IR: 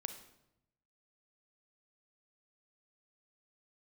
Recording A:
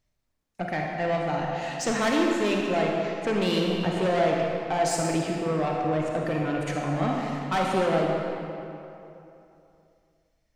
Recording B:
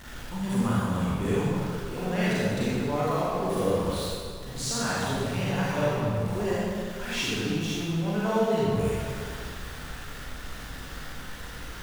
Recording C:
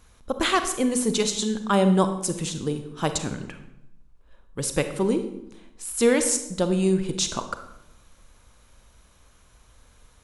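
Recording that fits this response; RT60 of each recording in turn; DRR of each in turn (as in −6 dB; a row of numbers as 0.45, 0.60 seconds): C; 2.9, 2.1, 0.85 seconds; −1.0, −9.0, 8.0 decibels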